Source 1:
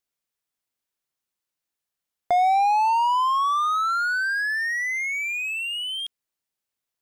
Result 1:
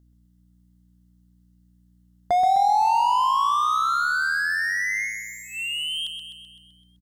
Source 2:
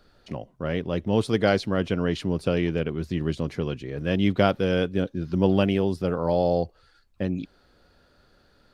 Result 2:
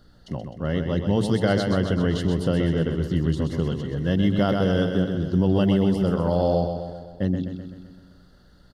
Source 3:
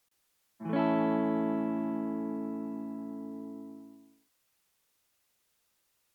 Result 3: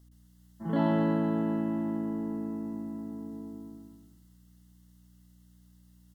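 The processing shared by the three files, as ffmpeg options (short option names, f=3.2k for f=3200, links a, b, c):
-filter_complex "[0:a]bass=f=250:g=6,treble=f=4k:g=3,bandreject=f=107.5:t=h:w=4,bandreject=f=215:t=h:w=4,bandreject=f=322.5:t=h:w=4,bandreject=f=430:t=h:w=4,aeval=exprs='val(0)+0.00158*(sin(2*PI*60*n/s)+sin(2*PI*2*60*n/s)/2+sin(2*PI*3*60*n/s)/3+sin(2*PI*4*60*n/s)/4+sin(2*PI*5*60*n/s)/5)':c=same,asuperstop=centerf=2400:order=12:qfactor=4.8,asplit=2[a][b];[b]aecho=0:1:128|256|384|512|640|768|896:0.447|0.259|0.15|0.0872|0.0505|0.0293|0.017[c];[a][c]amix=inputs=2:normalize=0,alimiter=level_in=8.5dB:limit=-1dB:release=50:level=0:latency=1,volume=-9dB"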